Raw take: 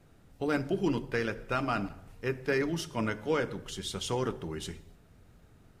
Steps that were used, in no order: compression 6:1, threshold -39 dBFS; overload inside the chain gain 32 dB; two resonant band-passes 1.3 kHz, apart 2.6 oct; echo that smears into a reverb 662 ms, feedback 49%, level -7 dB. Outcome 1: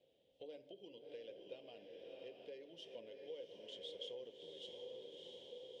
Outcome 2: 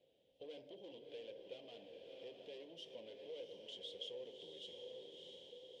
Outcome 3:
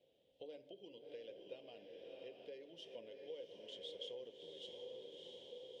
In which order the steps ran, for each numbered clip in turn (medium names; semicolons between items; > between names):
echo that smears into a reverb > compression > overload inside the chain > two resonant band-passes; overload inside the chain > echo that smears into a reverb > compression > two resonant band-passes; echo that smears into a reverb > compression > two resonant band-passes > overload inside the chain